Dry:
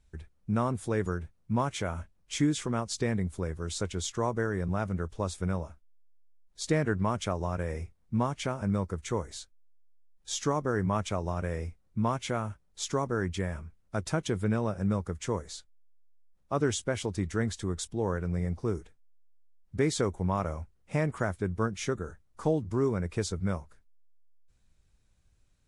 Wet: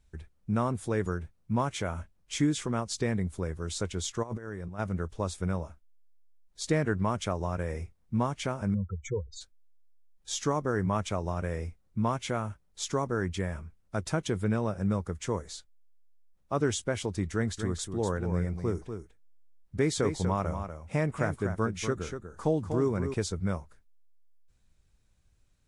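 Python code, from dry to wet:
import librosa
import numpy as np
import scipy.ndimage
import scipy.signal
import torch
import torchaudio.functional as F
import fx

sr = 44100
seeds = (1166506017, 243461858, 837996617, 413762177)

y = fx.over_compress(x, sr, threshold_db=-35.0, ratio=-0.5, at=(4.22, 4.78), fade=0.02)
y = fx.spec_expand(y, sr, power=3.6, at=(8.73, 9.4), fade=0.02)
y = fx.echo_single(y, sr, ms=242, db=-8.0, at=(17.33, 23.14))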